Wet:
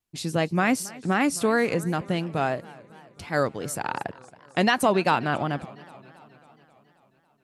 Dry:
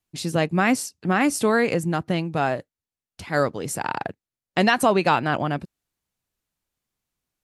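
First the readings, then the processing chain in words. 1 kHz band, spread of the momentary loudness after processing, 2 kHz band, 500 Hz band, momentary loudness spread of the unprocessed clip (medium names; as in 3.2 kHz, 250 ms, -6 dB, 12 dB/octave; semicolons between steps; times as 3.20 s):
-2.5 dB, 12 LU, -2.5 dB, -2.5 dB, 10 LU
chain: vibrato 2.8 Hz 42 cents; modulated delay 271 ms, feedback 64%, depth 182 cents, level -21 dB; trim -2.5 dB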